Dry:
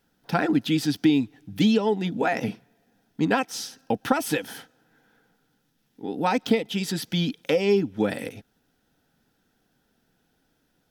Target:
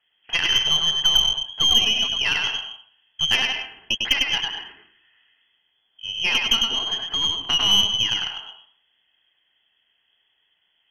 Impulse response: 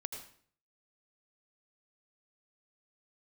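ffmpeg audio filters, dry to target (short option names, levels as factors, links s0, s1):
-filter_complex "[0:a]lowpass=f=2900:t=q:w=0.5098,lowpass=f=2900:t=q:w=0.6013,lowpass=f=2900:t=q:w=0.9,lowpass=f=2900:t=q:w=2.563,afreqshift=-3400,asplit=2[s0][s1];[1:a]atrim=start_sample=2205,adelay=101[s2];[s1][s2]afir=irnorm=-1:irlink=0,volume=1[s3];[s0][s3]amix=inputs=2:normalize=0,aeval=exprs='0.596*(cos(1*acos(clip(val(0)/0.596,-1,1)))-cos(1*PI/2))+0.0531*(cos(6*acos(clip(val(0)/0.596,-1,1)))-cos(6*PI/2))+0.00422*(cos(8*acos(clip(val(0)/0.596,-1,1)))-cos(8*PI/2))':c=same"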